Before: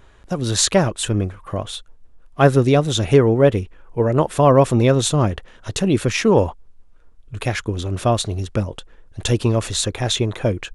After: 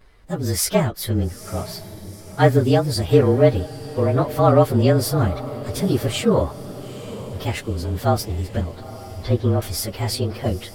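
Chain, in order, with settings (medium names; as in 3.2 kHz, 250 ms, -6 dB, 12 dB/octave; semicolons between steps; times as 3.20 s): frequency axis rescaled in octaves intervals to 110%; 8.61–9.62 s: Gaussian low-pass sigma 2.2 samples; echo that smears into a reverb 892 ms, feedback 55%, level -15 dB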